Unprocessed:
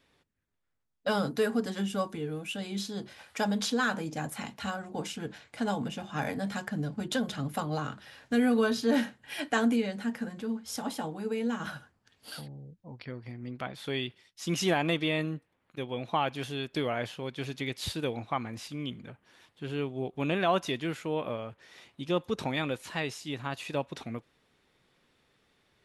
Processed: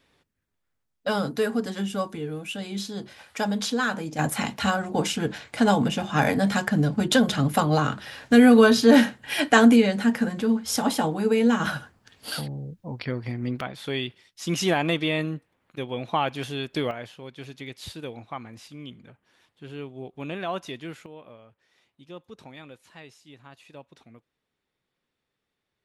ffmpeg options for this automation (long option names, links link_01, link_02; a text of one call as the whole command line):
ffmpeg -i in.wav -af "asetnsamples=nb_out_samples=441:pad=0,asendcmd='4.19 volume volume 11dB;13.61 volume volume 4dB;16.91 volume volume -4dB;21.06 volume volume -13dB',volume=3dB" out.wav